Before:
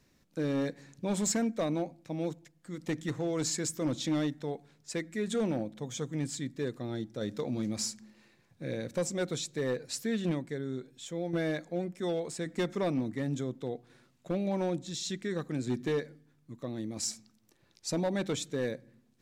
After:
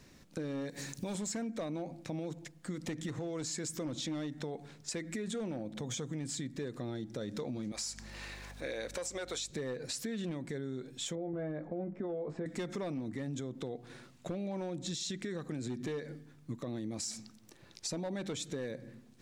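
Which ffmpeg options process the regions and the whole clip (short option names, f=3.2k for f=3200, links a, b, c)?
-filter_complex "[0:a]asettb=1/sr,asplit=3[a][b][c];[a]atrim=end=0.694[d];[b]atrim=start=0.69:end=1.15,asetpts=PTS-STARTPTS,afade=t=in:d=0.004:c=qsin,afade=t=out:st=0.456:d=0.004:c=qsin,aemphasis=mode=production:type=75kf,acompressor=threshold=-39dB:ratio=6:attack=3.2:release=140:knee=1:detection=peak[e];[c]atrim=start=1.146[f];[d][e]acrossfade=d=0.004:c1=hsin:c2=qsin[g];[g][f]acrossfade=d=0.004:c1=qsin:c2=hsin,asettb=1/sr,asplit=3[h][i][j];[h]atrim=end=7.724[k];[i]atrim=start=7.72:end=9.51,asetpts=PTS-STARTPTS,afade=t=in:d=0.004:c=qsin,afade=t=out:st=1.786:d=0.004:c=qsin,acompressor=mode=upward:threshold=-41dB:ratio=2.5:attack=3.2:release=140:knee=2.83:detection=peak,highpass=570,aeval=exprs='val(0)+0.00126*(sin(2*PI*50*n/s)+sin(2*PI*2*50*n/s)/2+sin(2*PI*3*50*n/s)/3+sin(2*PI*4*50*n/s)/4+sin(2*PI*5*50*n/s)/5)':c=same[l];[j]atrim=start=9.506[m];[k][l]acrossfade=d=0.004:c1=hsin:c2=qsin[n];[n][m]acrossfade=d=0.004:c1=qsin:c2=hsin,asettb=1/sr,asplit=3[o][p][q];[o]atrim=end=11.154[r];[p]atrim=start=11.15:end=12.46,asetpts=PTS-STARTPTS,afade=t=in:d=0.004:c=qsin,afade=t=out:st=1.306:d=0.004:c=qsin,lowpass=1.1k,asplit=2[s][t];[t]adelay=20,volume=-7.5dB[u];[s][u]amix=inputs=2:normalize=0,atrim=end_sample=57771[v];[q]atrim=start=12.456[w];[r][v]acrossfade=d=0.004:c1=hsin:c2=qsin[x];[x][w]acrossfade=d=0.004:c1=qsin:c2=hsin,equalizer=f=13k:w=4.7:g=-12,alimiter=level_in=10.5dB:limit=-24dB:level=0:latency=1:release=102,volume=-10.5dB,acompressor=threshold=-44dB:ratio=6,volume=9dB"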